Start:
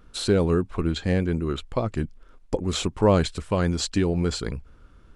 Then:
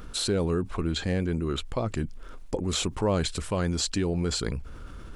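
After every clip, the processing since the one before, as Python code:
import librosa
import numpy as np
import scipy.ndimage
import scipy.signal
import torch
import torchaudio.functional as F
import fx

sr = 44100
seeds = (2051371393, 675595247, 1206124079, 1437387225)

y = fx.high_shelf(x, sr, hz=5900.0, db=5.5)
y = fx.env_flatten(y, sr, amount_pct=50)
y = y * librosa.db_to_amplitude(-7.5)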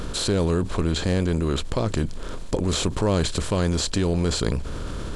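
y = fx.bin_compress(x, sr, power=0.6)
y = fx.low_shelf(y, sr, hz=180.0, db=5.5)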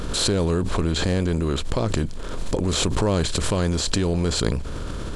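y = fx.pre_swell(x, sr, db_per_s=33.0)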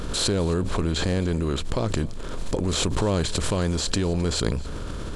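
y = x + 10.0 ** (-21.5 / 20.0) * np.pad(x, (int(263 * sr / 1000.0), 0))[:len(x)]
y = y * librosa.db_to_amplitude(-2.0)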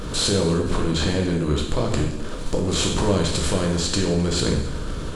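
y = fx.rev_plate(x, sr, seeds[0], rt60_s=0.82, hf_ratio=0.95, predelay_ms=0, drr_db=0.0)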